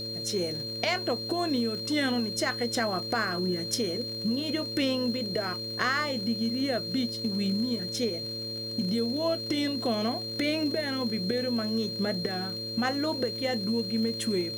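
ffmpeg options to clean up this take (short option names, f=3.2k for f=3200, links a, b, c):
-af "adeclick=t=4,bandreject=f=111.8:t=h:w=4,bandreject=f=223.6:t=h:w=4,bandreject=f=335.4:t=h:w=4,bandreject=f=447.2:t=h:w=4,bandreject=f=559:t=h:w=4,bandreject=f=4.2k:w=30,agate=range=-21dB:threshold=-28dB"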